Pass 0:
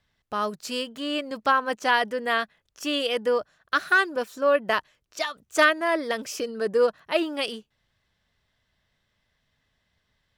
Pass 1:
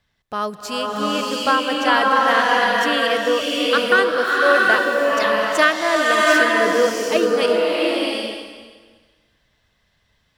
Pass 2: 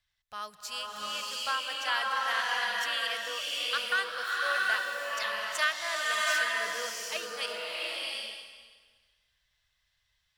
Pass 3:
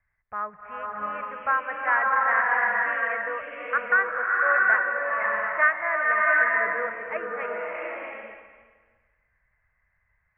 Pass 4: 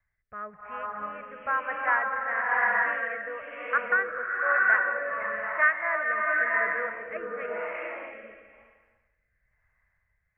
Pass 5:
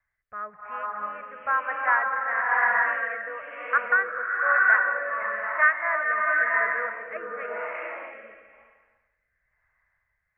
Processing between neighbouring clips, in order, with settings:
swelling reverb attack 740 ms, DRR -4 dB; trim +3 dB
amplifier tone stack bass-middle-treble 10-0-10; trim -6 dB
steep low-pass 2.2 kHz 72 dB/octave; trim +8.5 dB
rotary cabinet horn 1 Hz
peaking EQ 1.2 kHz +10 dB 2.7 oct; trim -6.5 dB

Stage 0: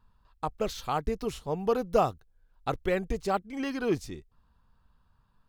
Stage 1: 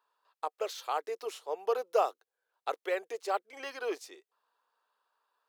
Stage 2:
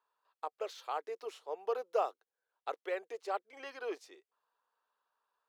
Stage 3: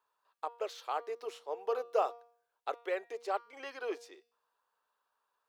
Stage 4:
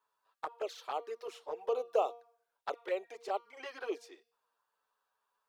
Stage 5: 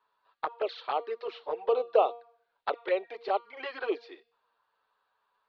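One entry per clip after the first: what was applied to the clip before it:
steep high-pass 410 Hz 36 dB/octave; trim -2.5 dB
treble shelf 6.1 kHz -10 dB; trim -4.5 dB
de-hum 236.2 Hz, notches 25; trim +2 dB
touch-sensitive flanger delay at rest 9.4 ms, full sweep at -32 dBFS; trim +2 dB
elliptic low-pass 4.3 kHz, stop band 60 dB; trim +7.5 dB

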